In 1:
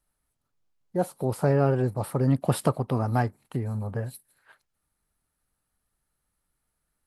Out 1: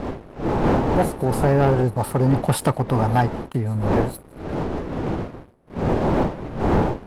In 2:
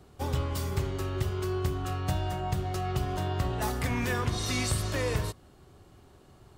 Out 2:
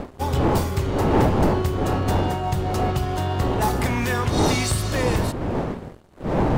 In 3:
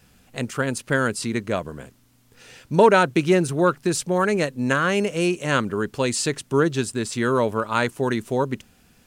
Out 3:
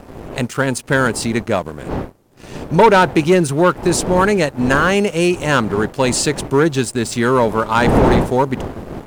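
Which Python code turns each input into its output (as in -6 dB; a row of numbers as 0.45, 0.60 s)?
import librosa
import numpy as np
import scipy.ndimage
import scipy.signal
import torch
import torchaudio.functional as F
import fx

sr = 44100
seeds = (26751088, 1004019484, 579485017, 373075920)

y = fx.dmg_wind(x, sr, seeds[0], corner_hz=420.0, level_db=-30.0)
y = fx.dynamic_eq(y, sr, hz=860.0, q=3.9, threshold_db=-43.0, ratio=4.0, max_db=6)
y = fx.leveller(y, sr, passes=2)
y = y * 10.0 ** (-1.0 / 20.0)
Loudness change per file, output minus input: +5.0, +8.5, +6.5 LU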